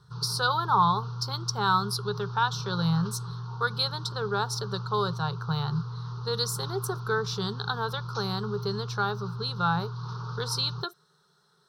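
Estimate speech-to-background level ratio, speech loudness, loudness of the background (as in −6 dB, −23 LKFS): 7.5 dB, −29.5 LKFS, −37.0 LKFS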